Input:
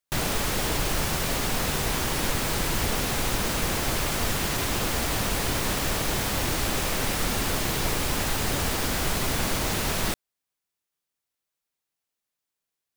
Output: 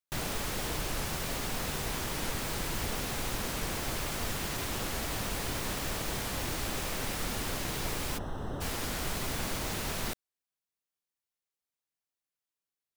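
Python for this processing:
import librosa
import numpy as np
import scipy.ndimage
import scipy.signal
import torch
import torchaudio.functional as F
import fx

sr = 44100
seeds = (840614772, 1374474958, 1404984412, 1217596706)

y = fx.moving_average(x, sr, points=19, at=(8.17, 8.6), fade=0.02)
y = fx.record_warp(y, sr, rpm=45.0, depth_cents=100.0)
y = F.gain(torch.from_numpy(y), -8.0).numpy()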